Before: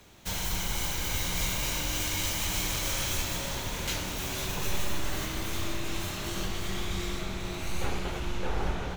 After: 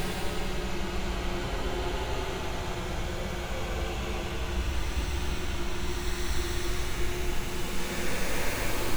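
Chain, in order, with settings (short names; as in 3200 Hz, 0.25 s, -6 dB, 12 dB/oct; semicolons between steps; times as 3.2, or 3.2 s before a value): wrapped overs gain 21.5 dB; reverse echo 59 ms -5.5 dB; Paulstretch 21×, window 0.10 s, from 7.98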